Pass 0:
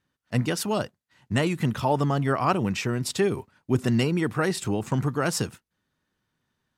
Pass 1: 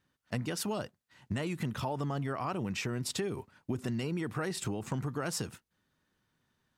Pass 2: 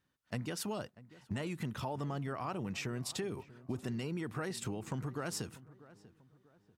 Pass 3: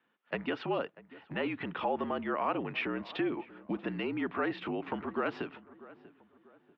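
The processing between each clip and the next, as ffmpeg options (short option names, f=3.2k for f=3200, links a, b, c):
-filter_complex "[0:a]asplit=2[a][b];[b]alimiter=limit=-19dB:level=0:latency=1:release=28,volume=3dB[c];[a][c]amix=inputs=2:normalize=0,acompressor=threshold=-24dB:ratio=6,volume=-7.5dB"
-filter_complex "[0:a]asplit=2[a][b];[b]adelay=641,lowpass=f=1.7k:p=1,volume=-18dB,asplit=2[c][d];[d]adelay=641,lowpass=f=1.7k:p=1,volume=0.39,asplit=2[e][f];[f]adelay=641,lowpass=f=1.7k:p=1,volume=0.39[g];[a][c][e][g]amix=inputs=4:normalize=0,volume=-4dB"
-af "highpass=f=290:t=q:w=0.5412,highpass=f=290:t=q:w=1.307,lowpass=f=3.2k:t=q:w=0.5176,lowpass=f=3.2k:t=q:w=0.7071,lowpass=f=3.2k:t=q:w=1.932,afreqshift=-51,volume=8.5dB"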